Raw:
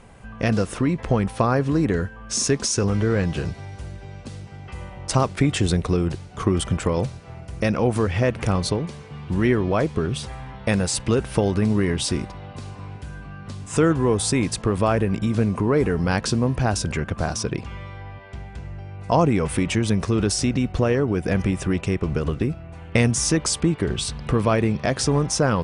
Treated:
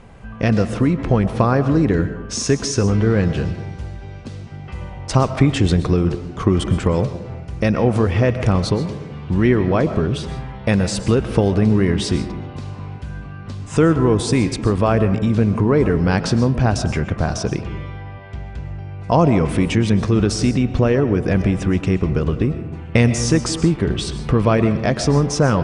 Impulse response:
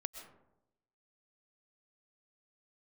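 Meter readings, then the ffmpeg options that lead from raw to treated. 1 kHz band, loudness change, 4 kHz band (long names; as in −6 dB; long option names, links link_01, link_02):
+3.0 dB, +4.0 dB, +1.0 dB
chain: -filter_complex "[0:a]asplit=2[link_01][link_02];[1:a]atrim=start_sample=2205,lowpass=7200,lowshelf=frequency=410:gain=5[link_03];[link_02][link_03]afir=irnorm=-1:irlink=0,volume=5.5dB[link_04];[link_01][link_04]amix=inputs=2:normalize=0,volume=-5.5dB"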